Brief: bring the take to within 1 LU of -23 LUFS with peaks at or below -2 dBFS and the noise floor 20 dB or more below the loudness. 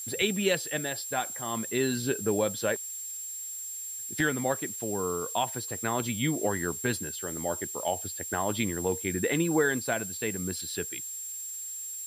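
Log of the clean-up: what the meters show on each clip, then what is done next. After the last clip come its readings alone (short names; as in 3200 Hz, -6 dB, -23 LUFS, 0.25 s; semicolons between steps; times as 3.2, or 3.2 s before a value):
steady tone 7500 Hz; tone level -36 dBFS; noise floor -38 dBFS; noise floor target -50 dBFS; loudness -30.0 LUFS; peak -13.5 dBFS; loudness target -23.0 LUFS
-> notch 7500 Hz, Q 30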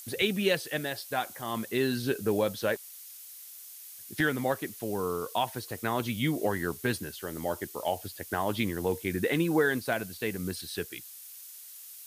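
steady tone none; noise floor -47 dBFS; noise floor target -51 dBFS
-> denoiser 6 dB, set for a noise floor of -47 dBFS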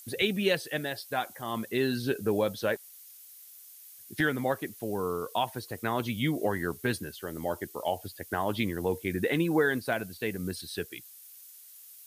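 noise floor -51 dBFS; loudness -31.0 LUFS; peak -14.5 dBFS; loudness target -23.0 LUFS
-> gain +8 dB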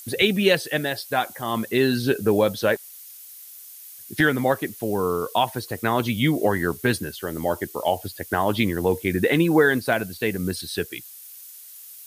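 loudness -23.0 LUFS; peak -6.5 dBFS; noise floor -43 dBFS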